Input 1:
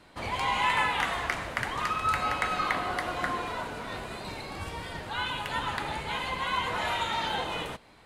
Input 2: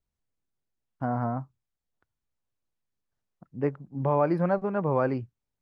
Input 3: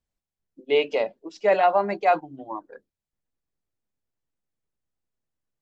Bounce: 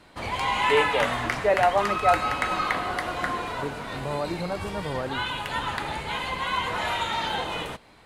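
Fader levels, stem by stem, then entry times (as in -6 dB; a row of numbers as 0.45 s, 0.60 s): +2.5 dB, -6.0 dB, -2.0 dB; 0.00 s, 0.00 s, 0.00 s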